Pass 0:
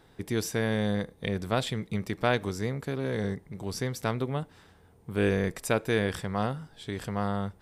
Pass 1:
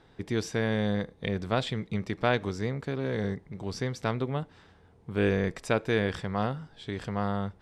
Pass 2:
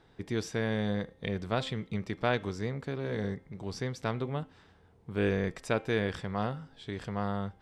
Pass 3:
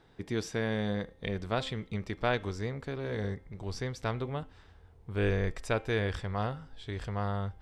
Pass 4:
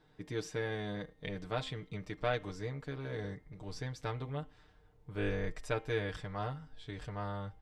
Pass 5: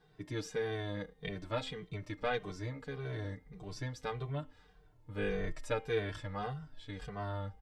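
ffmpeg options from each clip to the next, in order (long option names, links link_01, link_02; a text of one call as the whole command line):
ffmpeg -i in.wav -af "lowpass=5500" out.wav
ffmpeg -i in.wav -af "bandreject=frequency=263.2:width_type=h:width=4,bandreject=frequency=526.4:width_type=h:width=4,bandreject=frequency=789.6:width_type=h:width=4,bandreject=frequency=1052.8:width_type=h:width=4,bandreject=frequency=1316:width_type=h:width=4,bandreject=frequency=1579.2:width_type=h:width=4,bandreject=frequency=1842.4:width_type=h:width=4,bandreject=frequency=2105.6:width_type=h:width=4,bandreject=frequency=2368.8:width_type=h:width=4,bandreject=frequency=2632:width_type=h:width=4,bandreject=frequency=2895.2:width_type=h:width=4,bandreject=frequency=3158.4:width_type=h:width=4,bandreject=frequency=3421.6:width_type=h:width=4,volume=-3dB" out.wav
ffmpeg -i in.wav -af "asubboost=boost=7.5:cutoff=63" out.wav
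ffmpeg -i in.wav -af "aecho=1:1:6.6:0.78,volume=-7dB" out.wav
ffmpeg -i in.wav -filter_complex "[0:a]asplit=2[link_01][link_02];[link_02]adelay=2.1,afreqshift=-1.7[link_03];[link_01][link_03]amix=inputs=2:normalize=1,volume=3dB" out.wav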